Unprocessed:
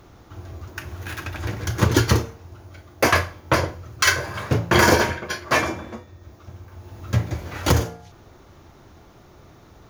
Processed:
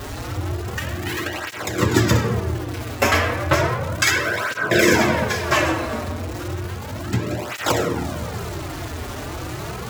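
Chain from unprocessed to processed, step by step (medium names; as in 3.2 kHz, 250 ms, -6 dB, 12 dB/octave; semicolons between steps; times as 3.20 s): jump at every zero crossing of -30.5 dBFS; in parallel at -0.5 dB: compression, threshold -26 dBFS, peak gain reduction 14.5 dB; on the sum: formant shift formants +2 st; on a send at -3 dB: reverberation RT60 1.8 s, pre-delay 20 ms; on the sum: spectral replace 4.19–4.93 s, 720–1600 Hz before; cancelling through-zero flanger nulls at 0.33 Hz, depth 6.2 ms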